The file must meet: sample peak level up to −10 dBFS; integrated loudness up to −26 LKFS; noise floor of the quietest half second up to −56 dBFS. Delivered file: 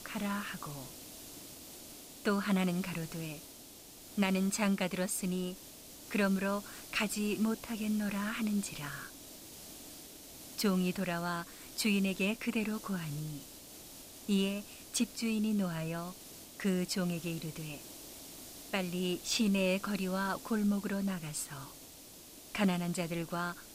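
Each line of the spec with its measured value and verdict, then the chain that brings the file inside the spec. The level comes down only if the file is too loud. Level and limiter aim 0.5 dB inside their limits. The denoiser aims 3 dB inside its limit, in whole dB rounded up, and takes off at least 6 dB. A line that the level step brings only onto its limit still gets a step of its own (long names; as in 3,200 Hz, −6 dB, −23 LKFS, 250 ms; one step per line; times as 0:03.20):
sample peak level −17.0 dBFS: in spec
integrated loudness −34.5 LKFS: in spec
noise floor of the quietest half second −53 dBFS: out of spec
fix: broadband denoise 6 dB, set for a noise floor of −53 dBFS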